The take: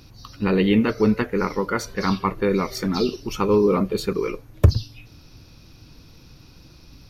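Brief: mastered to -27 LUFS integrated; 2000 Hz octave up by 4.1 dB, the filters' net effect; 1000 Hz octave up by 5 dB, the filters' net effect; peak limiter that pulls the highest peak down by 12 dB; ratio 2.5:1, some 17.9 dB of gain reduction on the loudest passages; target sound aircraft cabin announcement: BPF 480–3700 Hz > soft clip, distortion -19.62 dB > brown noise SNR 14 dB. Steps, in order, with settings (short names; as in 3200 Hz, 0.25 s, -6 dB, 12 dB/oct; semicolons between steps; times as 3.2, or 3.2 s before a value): bell 1000 Hz +5 dB; bell 2000 Hz +4 dB; compressor 2.5:1, threshold -36 dBFS; limiter -28.5 dBFS; BPF 480–3700 Hz; soft clip -32 dBFS; brown noise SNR 14 dB; gain +18.5 dB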